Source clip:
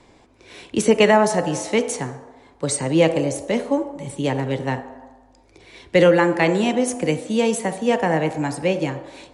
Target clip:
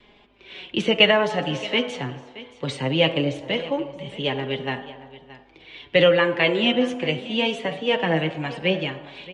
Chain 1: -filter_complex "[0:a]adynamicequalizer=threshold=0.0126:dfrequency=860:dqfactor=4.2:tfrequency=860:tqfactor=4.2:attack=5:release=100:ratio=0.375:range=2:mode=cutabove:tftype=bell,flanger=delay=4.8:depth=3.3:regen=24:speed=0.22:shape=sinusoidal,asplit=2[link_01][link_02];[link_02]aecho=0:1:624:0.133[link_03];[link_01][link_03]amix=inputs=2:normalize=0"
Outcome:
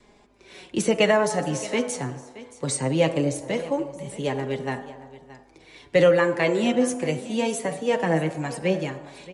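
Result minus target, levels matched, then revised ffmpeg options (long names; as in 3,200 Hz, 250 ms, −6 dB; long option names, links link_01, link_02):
4,000 Hz band −9.0 dB
-filter_complex "[0:a]adynamicequalizer=threshold=0.0126:dfrequency=860:dqfactor=4.2:tfrequency=860:tqfactor=4.2:attack=5:release=100:ratio=0.375:range=2:mode=cutabove:tftype=bell,lowpass=frequency=3100:width_type=q:width=4.2,flanger=delay=4.8:depth=3.3:regen=24:speed=0.22:shape=sinusoidal,asplit=2[link_01][link_02];[link_02]aecho=0:1:624:0.133[link_03];[link_01][link_03]amix=inputs=2:normalize=0"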